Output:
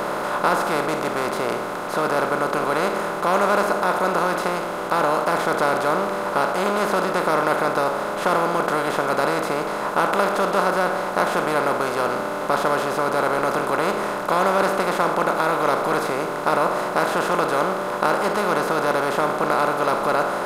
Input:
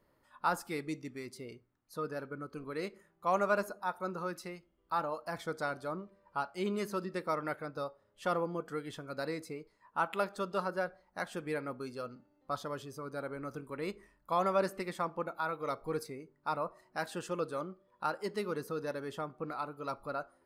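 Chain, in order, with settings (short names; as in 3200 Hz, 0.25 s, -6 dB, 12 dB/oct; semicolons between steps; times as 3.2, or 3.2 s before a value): per-bin compression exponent 0.2; gain +4.5 dB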